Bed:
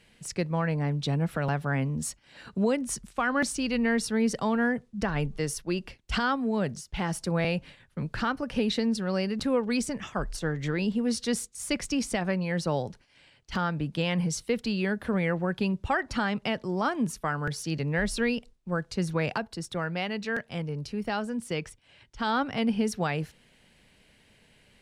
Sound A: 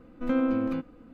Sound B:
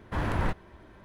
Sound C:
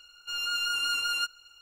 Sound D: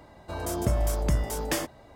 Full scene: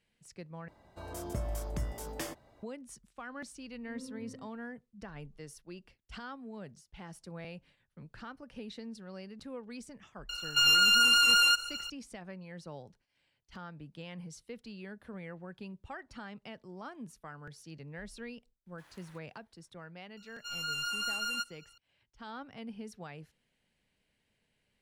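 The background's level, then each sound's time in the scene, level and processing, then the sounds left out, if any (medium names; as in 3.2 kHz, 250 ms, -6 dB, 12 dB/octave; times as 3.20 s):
bed -17.5 dB
0.68 s: replace with D -10.5 dB
3.66 s: add A -8 dB + pitch-class resonator A#, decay 0.22 s
10.29 s: add C -15.5 dB + loudness maximiser +30 dB
18.66 s: add B -13 dB + differentiator
20.17 s: add C -5.5 dB + comb 3.7 ms, depth 36%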